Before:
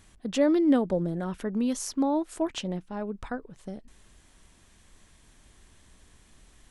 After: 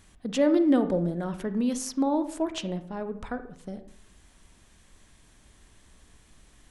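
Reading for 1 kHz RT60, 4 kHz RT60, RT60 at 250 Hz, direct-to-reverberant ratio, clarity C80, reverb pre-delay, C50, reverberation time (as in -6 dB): 0.60 s, 0.40 s, 0.85 s, 10.0 dB, 15.5 dB, 34 ms, 12.0 dB, 0.65 s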